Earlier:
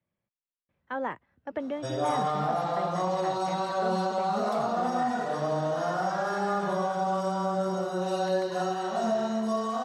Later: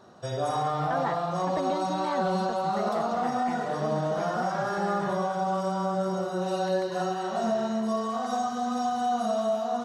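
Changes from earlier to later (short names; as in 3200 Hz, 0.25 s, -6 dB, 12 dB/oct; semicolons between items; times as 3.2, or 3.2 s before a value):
background: entry -1.60 s; master: add low shelf 69 Hz +11.5 dB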